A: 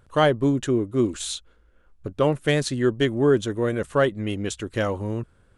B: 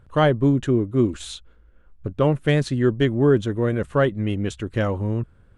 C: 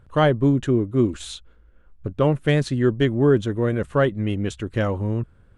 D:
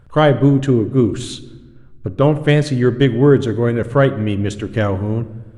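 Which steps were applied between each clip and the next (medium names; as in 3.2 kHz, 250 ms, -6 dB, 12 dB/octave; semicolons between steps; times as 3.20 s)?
tone controls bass +6 dB, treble -8 dB
no audible change
simulated room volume 760 m³, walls mixed, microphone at 0.35 m; trim +5 dB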